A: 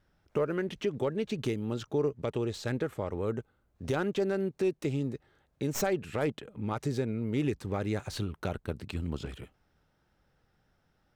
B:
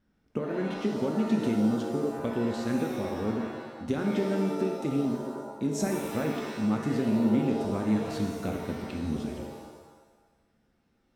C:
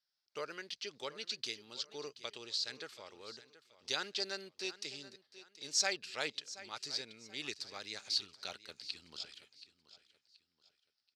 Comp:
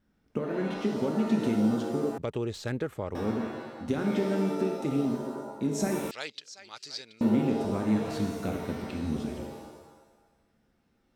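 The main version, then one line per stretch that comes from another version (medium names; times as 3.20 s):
B
2.18–3.15 s: from A
6.11–7.21 s: from C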